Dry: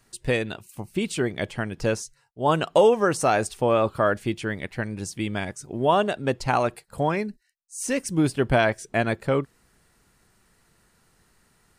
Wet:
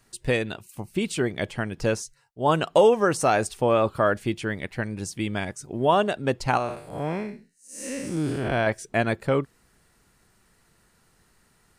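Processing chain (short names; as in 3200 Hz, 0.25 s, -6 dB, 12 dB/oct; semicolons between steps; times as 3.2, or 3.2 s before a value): 6.57–8.67 time blur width 0.198 s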